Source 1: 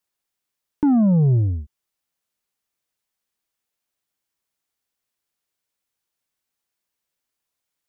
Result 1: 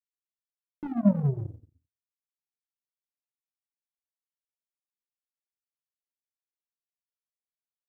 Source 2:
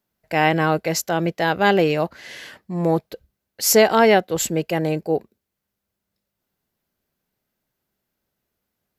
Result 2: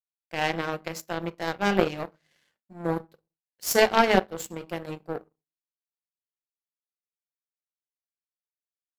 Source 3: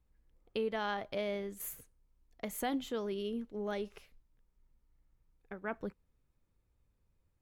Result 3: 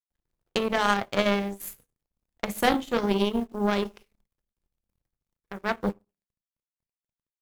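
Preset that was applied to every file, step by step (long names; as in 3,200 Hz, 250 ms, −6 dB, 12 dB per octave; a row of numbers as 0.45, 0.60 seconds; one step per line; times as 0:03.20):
bit reduction 11 bits
rectangular room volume 310 cubic metres, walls furnished, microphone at 0.84 metres
power curve on the samples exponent 2
loudness normalisation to −27 LKFS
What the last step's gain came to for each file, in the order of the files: −6.0, −1.0, +17.5 decibels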